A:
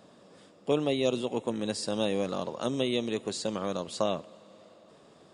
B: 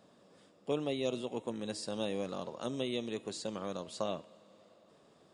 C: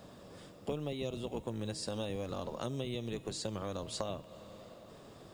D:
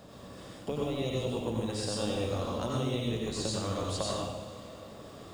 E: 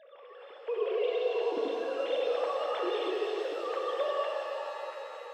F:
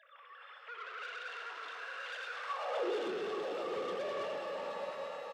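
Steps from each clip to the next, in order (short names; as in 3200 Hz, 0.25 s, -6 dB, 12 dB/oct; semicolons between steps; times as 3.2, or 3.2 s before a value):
de-hum 316.1 Hz, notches 14; gain -7 dB
octaver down 1 oct, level -1 dB; compressor 5:1, threshold -45 dBFS, peak gain reduction 16.5 dB; companded quantiser 8-bit; gain +9 dB
reverb, pre-delay 82 ms, DRR -3.5 dB; gain +1.5 dB
sine-wave speech; HPF 330 Hz 6 dB/oct; shimmer reverb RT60 3.5 s, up +7 st, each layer -8 dB, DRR 0.5 dB
soft clip -34.5 dBFS, distortion -9 dB; high-pass sweep 1400 Hz -> 190 Hz, 2.47–3.13; echo 0.825 s -8 dB; gain -2 dB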